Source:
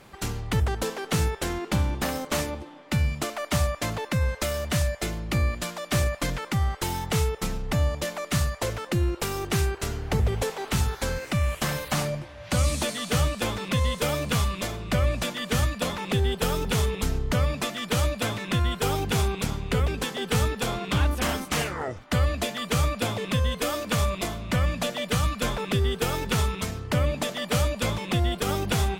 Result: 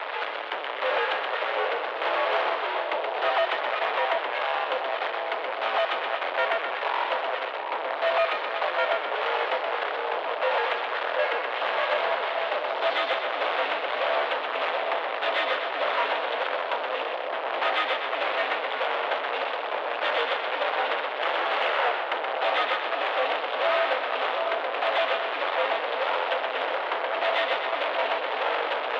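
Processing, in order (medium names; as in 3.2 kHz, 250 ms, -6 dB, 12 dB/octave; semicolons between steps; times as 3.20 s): tilt EQ -2.5 dB/octave; band-stop 2.3 kHz, Q 17; reverse; compression 10:1, threshold -21 dBFS, peak gain reduction 12.5 dB; reverse; fuzz box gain 54 dB, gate -45 dBFS; on a send: two-band feedback delay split 930 Hz, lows 728 ms, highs 125 ms, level -4 dB; on the sum: mistuned SSB +77 Hz 460–3400 Hz; Chebyshev shaper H 5 -35 dB, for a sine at -4.5 dBFS; trim -7.5 dB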